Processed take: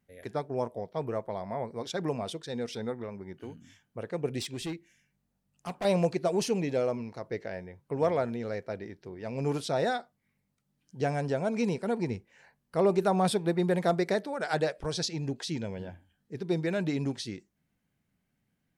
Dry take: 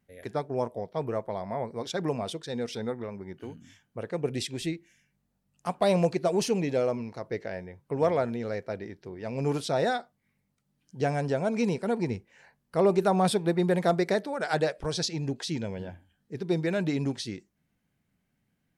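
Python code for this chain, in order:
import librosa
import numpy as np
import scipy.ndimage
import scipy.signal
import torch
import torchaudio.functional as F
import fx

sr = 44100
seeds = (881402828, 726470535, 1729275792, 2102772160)

y = fx.overload_stage(x, sr, gain_db=29.0, at=(4.39, 5.85))
y = F.gain(torch.from_numpy(y), -2.0).numpy()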